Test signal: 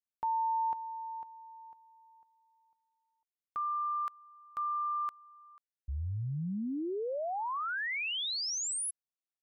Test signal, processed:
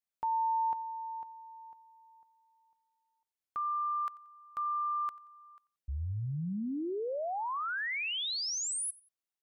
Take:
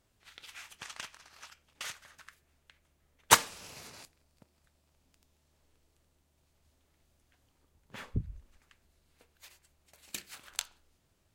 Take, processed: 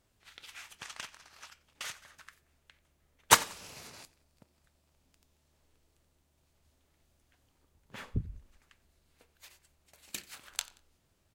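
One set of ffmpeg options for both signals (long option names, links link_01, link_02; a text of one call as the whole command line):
ffmpeg -i in.wav -af "aecho=1:1:90|180:0.075|0.0255" out.wav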